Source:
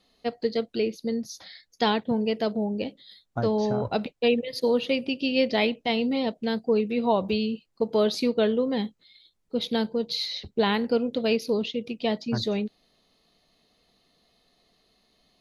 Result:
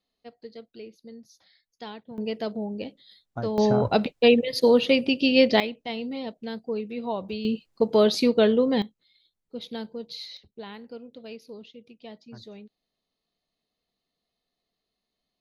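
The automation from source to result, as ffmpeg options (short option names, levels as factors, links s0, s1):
-af "asetnsamples=n=441:p=0,asendcmd='2.18 volume volume -4dB;3.58 volume volume 5dB;5.6 volume volume -7dB;7.45 volume volume 3.5dB;8.82 volume volume -9dB;10.37 volume volume -17dB',volume=0.158"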